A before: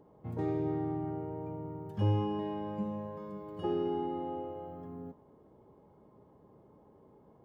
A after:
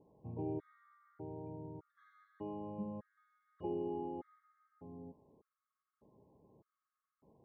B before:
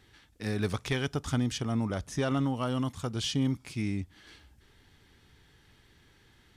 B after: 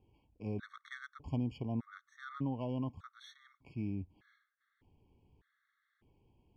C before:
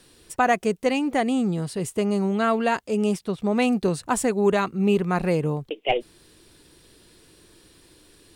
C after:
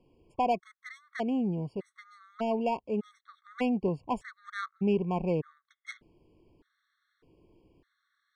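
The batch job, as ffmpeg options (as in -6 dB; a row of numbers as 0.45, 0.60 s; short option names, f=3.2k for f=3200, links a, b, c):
-af "adynamicsmooth=sensitivity=1:basefreq=1.7k,afftfilt=real='re*gt(sin(2*PI*0.83*pts/sr)*(1-2*mod(floor(b*sr/1024/1100),2)),0)':imag='im*gt(sin(2*PI*0.83*pts/sr)*(1-2*mod(floor(b*sr/1024/1100),2)),0)':win_size=1024:overlap=0.75,volume=-6dB"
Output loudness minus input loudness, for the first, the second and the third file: -8.5, -9.0, -8.5 LU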